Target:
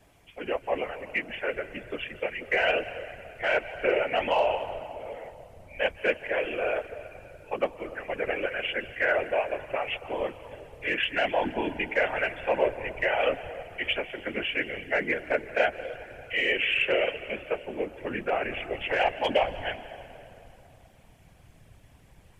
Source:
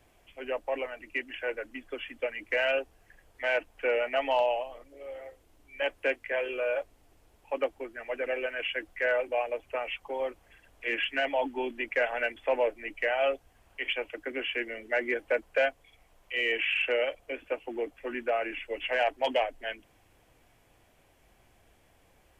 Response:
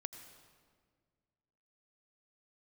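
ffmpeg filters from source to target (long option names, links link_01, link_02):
-filter_complex "[0:a]asplit=2[link_01][link_02];[1:a]atrim=start_sample=2205,asetrate=23814,aresample=44100[link_03];[link_02][link_03]afir=irnorm=-1:irlink=0,volume=-0.5dB[link_04];[link_01][link_04]amix=inputs=2:normalize=0,asubboost=boost=2:cutoff=210,afftfilt=real='hypot(re,im)*cos(2*PI*random(0))':imag='hypot(re,im)*sin(2*PI*random(1))':win_size=512:overlap=0.75,volume=3.5dB"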